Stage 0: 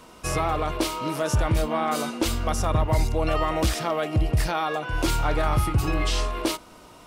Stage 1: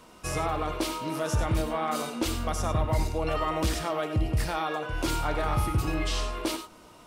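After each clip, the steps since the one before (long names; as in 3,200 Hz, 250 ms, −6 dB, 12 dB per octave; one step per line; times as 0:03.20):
reverb whose tail is shaped and stops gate 120 ms rising, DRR 8 dB
level −4.5 dB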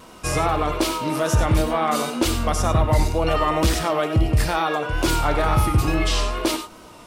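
tape wow and flutter 41 cents
level +8 dB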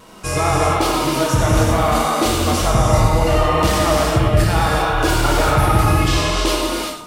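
reverb whose tail is shaped and stops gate 420 ms flat, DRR −4 dB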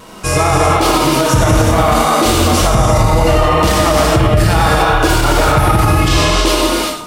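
boost into a limiter +8 dB
level −1 dB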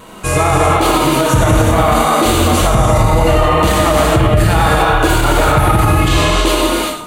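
parametric band 5,300 Hz −13 dB 0.26 octaves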